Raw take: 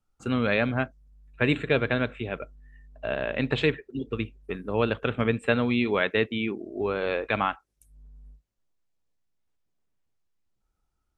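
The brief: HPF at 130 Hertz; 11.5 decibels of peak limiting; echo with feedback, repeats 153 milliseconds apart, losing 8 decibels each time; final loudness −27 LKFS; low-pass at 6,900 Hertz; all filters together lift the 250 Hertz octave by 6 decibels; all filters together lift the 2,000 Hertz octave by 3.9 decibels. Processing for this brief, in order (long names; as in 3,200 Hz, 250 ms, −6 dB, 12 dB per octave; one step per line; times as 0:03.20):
high-pass filter 130 Hz
low-pass filter 6,900 Hz
parametric band 250 Hz +7 dB
parametric band 2,000 Hz +5 dB
brickwall limiter −16 dBFS
repeating echo 153 ms, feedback 40%, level −8 dB
level +0.5 dB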